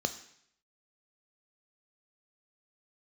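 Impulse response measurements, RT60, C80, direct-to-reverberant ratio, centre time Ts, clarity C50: 0.70 s, 16.5 dB, 9.5 dB, 7 ms, 14.0 dB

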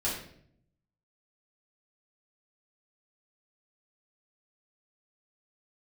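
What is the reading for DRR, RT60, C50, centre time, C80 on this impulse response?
-7.0 dB, 0.65 s, 3.5 dB, 41 ms, 7.0 dB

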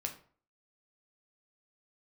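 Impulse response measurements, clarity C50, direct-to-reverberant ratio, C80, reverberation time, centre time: 11.0 dB, 3.0 dB, 15.5 dB, 0.45 s, 12 ms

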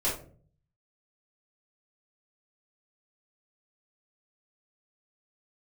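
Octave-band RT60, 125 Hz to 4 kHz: 0.95 s, 0.70 s, 0.55 s, 0.35 s, 0.30 s, 0.25 s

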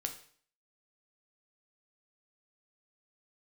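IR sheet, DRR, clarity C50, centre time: 4.5 dB, 10.5 dB, 12 ms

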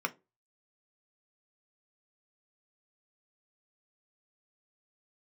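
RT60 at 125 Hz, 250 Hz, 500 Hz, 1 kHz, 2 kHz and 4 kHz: 0.30 s, 0.30 s, 0.30 s, 0.20 s, 0.20 s, 0.15 s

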